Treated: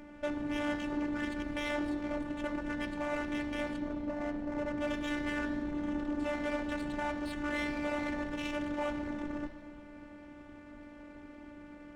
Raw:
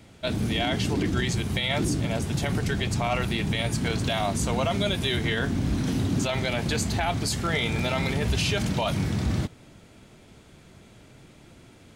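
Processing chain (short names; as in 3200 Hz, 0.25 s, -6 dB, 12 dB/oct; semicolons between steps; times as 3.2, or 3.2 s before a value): 3.78–4.78 median filter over 41 samples; Bessel low-pass 1600 Hz, order 2; in parallel at -1 dB: compressor, threshold -35 dBFS, peak gain reduction 13.5 dB; on the sum: soft clip -28.5 dBFS, distortion -8 dB; robotiser 294 Hz; on a send at -7 dB: reverb RT60 1.8 s, pre-delay 33 ms; on the sum: running maximum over 5 samples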